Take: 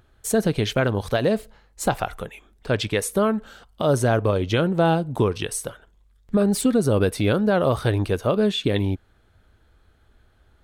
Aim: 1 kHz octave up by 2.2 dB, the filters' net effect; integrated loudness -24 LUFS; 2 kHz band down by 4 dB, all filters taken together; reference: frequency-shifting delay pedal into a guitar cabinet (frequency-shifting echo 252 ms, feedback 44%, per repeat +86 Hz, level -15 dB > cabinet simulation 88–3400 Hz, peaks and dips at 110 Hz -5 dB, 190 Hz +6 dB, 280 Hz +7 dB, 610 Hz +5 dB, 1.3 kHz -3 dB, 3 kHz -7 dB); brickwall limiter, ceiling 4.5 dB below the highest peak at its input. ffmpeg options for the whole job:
-filter_complex "[0:a]equalizer=f=1000:t=o:g=3.5,equalizer=f=2000:t=o:g=-5.5,alimiter=limit=0.224:level=0:latency=1,asplit=5[s0][s1][s2][s3][s4];[s1]adelay=252,afreqshift=86,volume=0.178[s5];[s2]adelay=504,afreqshift=172,volume=0.0785[s6];[s3]adelay=756,afreqshift=258,volume=0.0343[s7];[s4]adelay=1008,afreqshift=344,volume=0.0151[s8];[s0][s5][s6][s7][s8]amix=inputs=5:normalize=0,highpass=88,equalizer=f=110:t=q:w=4:g=-5,equalizer=f=190:t=q:w=4:g=6,equalizer=f=280:t=q:w=4:g=7,equalizer=f=610:t=q:w=4:g=5,equalizer=f=1300:t=q:w=4:g=-3,equalizer=f=3000:t=q:w=4:g=-7,lowpass=f=3400:w=0.5412,lowpass=f=3400:w=1.3066,volume=0.75"

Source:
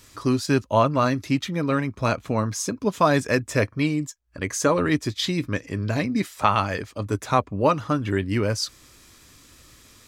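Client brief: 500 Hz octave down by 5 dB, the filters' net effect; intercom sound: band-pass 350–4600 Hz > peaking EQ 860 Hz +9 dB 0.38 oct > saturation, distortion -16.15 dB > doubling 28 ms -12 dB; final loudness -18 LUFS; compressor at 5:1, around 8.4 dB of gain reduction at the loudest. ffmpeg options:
-filter_complex "[0:a]equalizer=f=500:t=o:g=-6.5,acompressor=threshold=0.0562:ratio=5,highpass=350,lowpass=4600,equalizer=f=860:t=o:w=0.38:g=9,asoftclip=threshold=0.126,asplit=2[s0][s1];[s1]adelay=28,volume=0.251[s2];[s0][s2]amix=inputs=2:normalize=0,volume=5.62"

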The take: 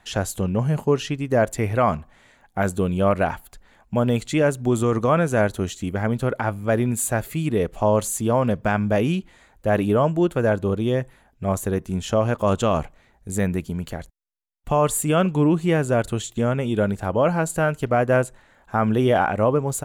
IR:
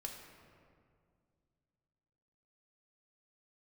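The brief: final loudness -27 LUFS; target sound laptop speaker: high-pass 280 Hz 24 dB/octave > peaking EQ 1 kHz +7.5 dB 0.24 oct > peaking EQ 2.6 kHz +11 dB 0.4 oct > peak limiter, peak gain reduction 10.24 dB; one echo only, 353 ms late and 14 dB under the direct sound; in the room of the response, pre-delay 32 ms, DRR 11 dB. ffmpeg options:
-filter_complex "[0:a]aecho=1:1:353:0.2,asplit=2[s0][s1];[1:a]atrim=start_sample=2205,adelay=32[s2];[s1][s2]afir=irnorm=-1:irlink=0,volume=0.355[s3];[s0][s3]amix=inputs=2:normalize=0,highpass=f=280:w=0.5412,highpass=f=280:w=1.3066,equalizer=f=1000:t=o:w=0.24:g=7.5,equalizer=f=2600:t=o:w=0.4:g=11,volume=0.891,alimiter=limit=0.178:level=0:latency=1"

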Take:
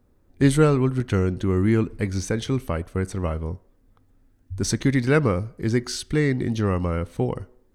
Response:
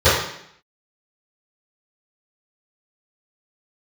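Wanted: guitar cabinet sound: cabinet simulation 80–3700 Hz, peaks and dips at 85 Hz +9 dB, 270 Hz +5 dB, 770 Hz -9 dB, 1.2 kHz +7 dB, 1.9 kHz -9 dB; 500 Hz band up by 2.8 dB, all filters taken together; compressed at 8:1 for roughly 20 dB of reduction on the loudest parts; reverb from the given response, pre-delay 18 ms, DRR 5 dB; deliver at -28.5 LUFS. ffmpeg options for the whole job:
-filter_complex "[0:a]equalizer=f=500:t=o:g=3.5,acompressor=threshold=0.0251:ratio=8,asplit=2[s0][s1];[1:a]atrim=start_sample=2205,adelay=18[s2];[s1][s2]afir=irnorm=-1:irlink=0,volume=0.0282[s3];[s0][s3]amix=inputs=2:normalize=0,highpass=80,equalizer=f=85:t=q:w=4:g=9,equalizer=f=270:t=q:w=4:g=5,equalizer=f=770:t=q:w=4:g=-9,equalizer=f=1200:t=q:w=4:g=7,equalizer=f=1900:t=q:w=4:g=-9,lowpass=f=3700:w=0.5412,lowpass=f=3700:w=1.3066,volume=1.41"

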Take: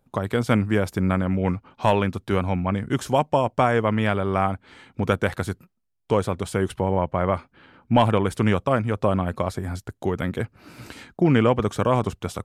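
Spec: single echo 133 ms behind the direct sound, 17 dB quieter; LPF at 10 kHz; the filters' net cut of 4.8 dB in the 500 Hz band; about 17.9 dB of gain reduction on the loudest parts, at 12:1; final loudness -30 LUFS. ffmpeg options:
-af "lowpass=10000,equalizer=f=500:t=o:g=-6,acompressor=threshold=0.02:ratio=12,aecho=1:1:133:0.141,volume=2.99"

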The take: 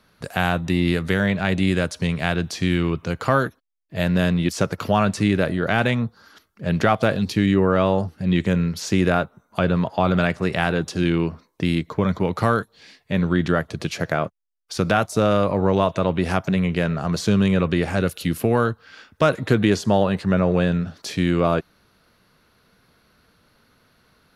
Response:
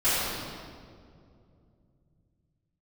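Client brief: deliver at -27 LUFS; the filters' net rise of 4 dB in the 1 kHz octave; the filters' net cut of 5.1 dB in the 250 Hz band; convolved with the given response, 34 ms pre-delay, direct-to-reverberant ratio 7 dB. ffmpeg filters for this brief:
-filter_complex "[0:a]equalizer=f=250:t=o:g=-8.5,equalizer=f=1000:t=o:g=6,asplit=2[s0][s1];[1:a]atrim=start_sample=2205,adelay=34[s2];[s1][s2]afir=irnorm=-1:irlink=0,volume=0.075[s3];[s0][s3]amix=inputs=2:normalize=0,volume=0.531"

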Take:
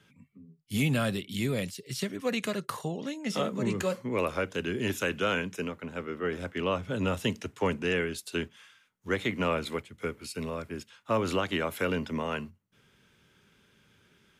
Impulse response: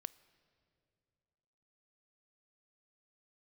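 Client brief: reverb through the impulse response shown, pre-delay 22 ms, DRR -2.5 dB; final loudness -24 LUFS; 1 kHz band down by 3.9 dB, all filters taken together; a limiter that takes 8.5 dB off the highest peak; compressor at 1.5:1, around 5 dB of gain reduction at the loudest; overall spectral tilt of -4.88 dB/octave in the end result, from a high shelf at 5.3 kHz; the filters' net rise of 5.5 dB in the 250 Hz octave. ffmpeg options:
-filter_complex "[0:a]equalizer=f=250:t=o:g=7,equalizer=f=1000:t=o:g=-6,highshelf=f=5300:g=8.5,acompressor=threshold=0.02:ratio=1.5,alimiter=limit=0.0631:level=0:latency=1,asplit=2[s0][s1];[1:a]atrim=start_sample=2205,adelay=22[s2];[s1][s2]afir=irnorm=-1:irlink=0,volume=2.24[s3];[s0][s3]amix=inputs=2:normalize=0,volume=2"

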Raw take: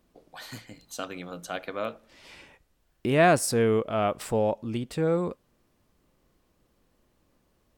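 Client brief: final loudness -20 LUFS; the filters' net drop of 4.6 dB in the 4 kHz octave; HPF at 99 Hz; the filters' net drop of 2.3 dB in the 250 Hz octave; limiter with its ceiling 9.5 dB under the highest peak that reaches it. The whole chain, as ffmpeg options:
-af "highpass=99,equalizer=f=250:t=o:g=-3,equalizer=f=4000:t=o:g=-6.5,volume=3.35,alimiter=limit=0.422:level=0:latency=1"

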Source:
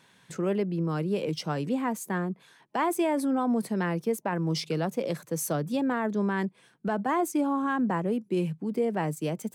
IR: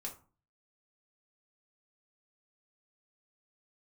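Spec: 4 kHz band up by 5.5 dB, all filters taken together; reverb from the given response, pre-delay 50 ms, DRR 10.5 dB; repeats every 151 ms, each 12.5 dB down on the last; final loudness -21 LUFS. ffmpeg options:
-filter_complex "[0:a]equalizer=f=4000:t=o:g=7.5,aecho=1:1:151|302|453:0.237|0.0569|0.0137,asplit=2[s0][s1];[1:a]atrim=start_sample=2205,adelay=50[s2];[s1][s2]afir=irnorm=-1:irlink=0,volume=0.376[s3];[s0][s3]amix=inputs=2:normalize=0,volume=2.24"

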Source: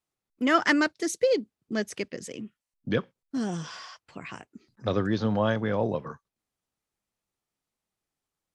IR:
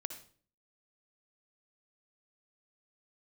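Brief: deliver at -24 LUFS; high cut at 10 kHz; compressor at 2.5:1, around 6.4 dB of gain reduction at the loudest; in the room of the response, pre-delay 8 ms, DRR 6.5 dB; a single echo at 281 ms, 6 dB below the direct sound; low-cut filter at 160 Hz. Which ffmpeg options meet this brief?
-filter_complex "[0:a]highpass=160,lowpass=10000,acompressor=threshold=0.0447:ratio=2.5,aecho=1:1:281:0.501,asplit=2[s0][s1];[1:a]atrim=start_sample=2205,adelay=8[s2];[s1][s2]afir=irnorm=-1:irlink=0,volume=0.562[s3];[s0][s3]amix=inputs=2:normalize=0,volume=2.24"

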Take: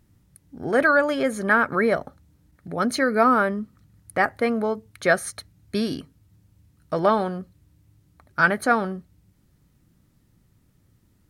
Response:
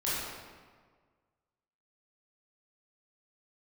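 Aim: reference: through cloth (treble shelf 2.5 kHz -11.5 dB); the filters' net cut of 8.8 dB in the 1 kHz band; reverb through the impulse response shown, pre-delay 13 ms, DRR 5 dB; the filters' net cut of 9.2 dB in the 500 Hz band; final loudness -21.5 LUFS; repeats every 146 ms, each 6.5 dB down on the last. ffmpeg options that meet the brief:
-filter_complex "[0:a]equalizer=f=500:t=o:g=-8.5,equalizer=f=1000:t=o:g=-7.5,aecho=1:1:146|292|438|584|730|876:0.473|0.222|0.105|0.0491|0.0231|0.0109,asplit=2[s0][s1];[1:a]atrim=start_sample=2205,adelay=13[s2];[s1][s2]afir=irnorm=-1:irlink=0,volume=0.224[s3];[s0][s3]amix=inputs=2:normalize=0,highshelf=f=2500:g=-11.5,volume=2"

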